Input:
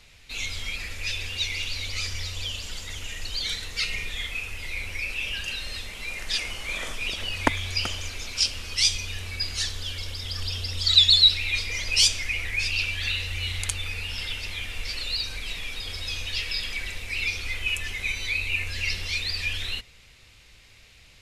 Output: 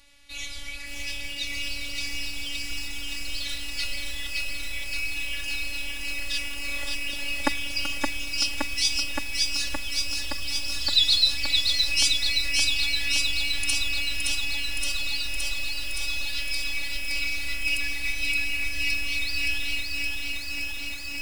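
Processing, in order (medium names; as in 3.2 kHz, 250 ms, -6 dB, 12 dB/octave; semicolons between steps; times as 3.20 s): peaking EQ 10 kHz +7 dB 0.26 oct; robot voice 284 Hz; bit-crushed delay 569 ms, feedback 80%, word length 7-bit, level -3 dB; trim -1.5 dB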